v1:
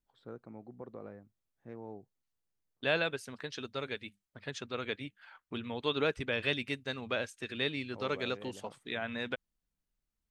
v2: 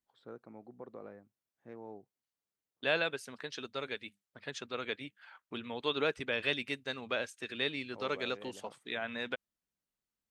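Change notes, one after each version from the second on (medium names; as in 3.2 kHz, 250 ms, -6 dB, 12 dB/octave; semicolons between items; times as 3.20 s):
master: add high-pass 260 Hz 6 dB/octave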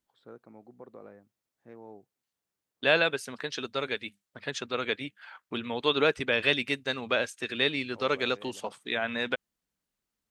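second voice +7.5 dB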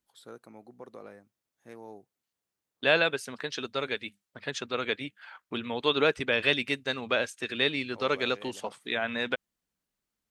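first voice: remove tape spacing loss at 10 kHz 35 dB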